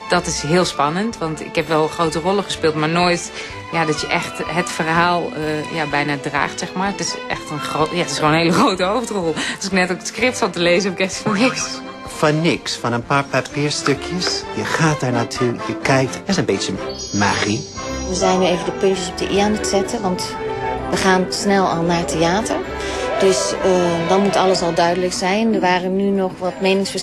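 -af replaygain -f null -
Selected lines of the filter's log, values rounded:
track_gain = -1.7 dB
track_peak = 0.572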